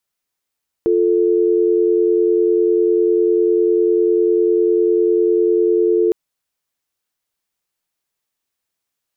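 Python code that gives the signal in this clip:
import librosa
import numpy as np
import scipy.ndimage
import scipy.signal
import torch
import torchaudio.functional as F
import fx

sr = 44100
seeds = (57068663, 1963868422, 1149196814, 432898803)

y = fx.call_progress(sr, length_s=5.26, kind='dial tone', level_db=-14.5)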